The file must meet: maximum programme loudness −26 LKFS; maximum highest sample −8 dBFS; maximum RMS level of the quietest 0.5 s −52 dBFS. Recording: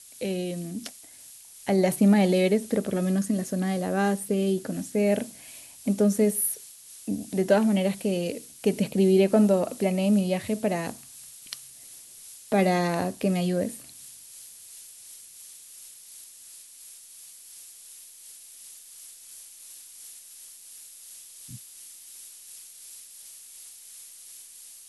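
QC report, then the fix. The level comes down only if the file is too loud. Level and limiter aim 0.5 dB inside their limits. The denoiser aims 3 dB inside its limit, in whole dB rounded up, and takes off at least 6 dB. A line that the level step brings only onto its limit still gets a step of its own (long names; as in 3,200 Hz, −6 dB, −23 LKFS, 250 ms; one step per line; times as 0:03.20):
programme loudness −25.0 LKFS: out of spec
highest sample −9.0 dBFS: in spec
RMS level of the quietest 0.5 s −48 dBFS: out of spec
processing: broadband denoise 6 dB, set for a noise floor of −48 dBFS
level −1.5 dB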